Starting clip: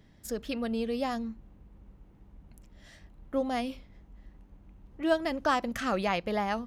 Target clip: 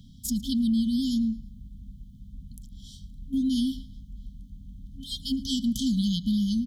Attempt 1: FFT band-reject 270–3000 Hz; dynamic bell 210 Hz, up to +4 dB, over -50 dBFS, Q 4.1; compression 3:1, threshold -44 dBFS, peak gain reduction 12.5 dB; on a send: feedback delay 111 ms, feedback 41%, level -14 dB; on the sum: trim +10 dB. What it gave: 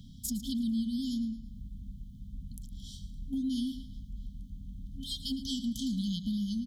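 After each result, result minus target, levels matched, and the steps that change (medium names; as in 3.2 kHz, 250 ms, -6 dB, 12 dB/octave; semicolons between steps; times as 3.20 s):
compression: peak gain reduction +7.5 dB; echo-to-direct +8 dB
change: compression 3:1, threshold -32.5 dBFS, peak gain reduction 4.5 dB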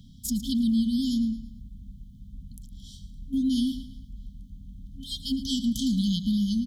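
echo-to-direct +8 dB
change: feedback delay 111 ms, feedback 41%, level -22 dB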